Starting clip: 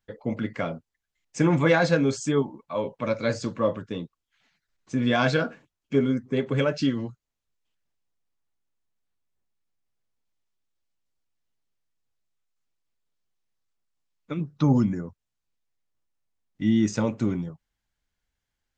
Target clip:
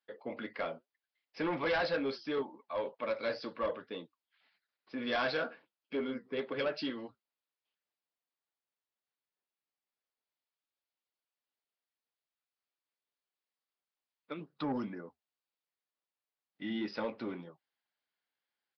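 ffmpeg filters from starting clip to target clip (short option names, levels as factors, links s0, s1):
-af "highpass=420,flanger=delay=3.5:depth=4.1:regen=-74:speed=2:shape=sinusoidal,aresample=11025,asoftclip=type=tanh:threshold=0.0447,aresample=44100"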